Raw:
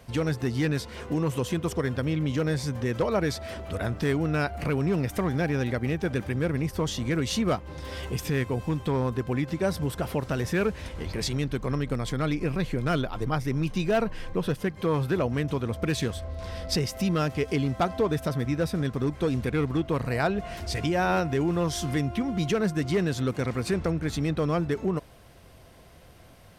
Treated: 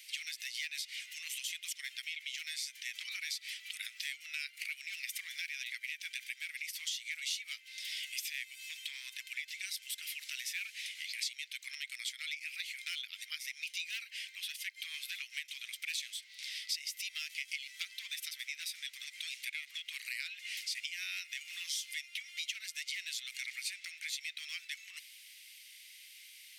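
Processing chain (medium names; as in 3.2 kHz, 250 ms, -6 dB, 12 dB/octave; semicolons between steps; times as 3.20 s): Chebyshev high-pass 2.1 kHz, order 5; compression 3:1, threshold -47 dBFS, peak gain reduction 16 dB; trim +8 dB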